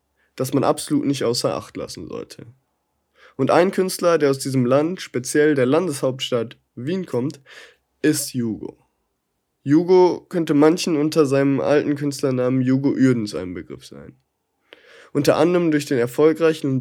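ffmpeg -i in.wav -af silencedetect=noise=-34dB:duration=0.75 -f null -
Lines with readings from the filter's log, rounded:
silence_start: 2.43
silence_end: 3.39 | silence_duration: 0.96
silence_start: 8.70
silence_end: 9.66 | silence_duration: 0.96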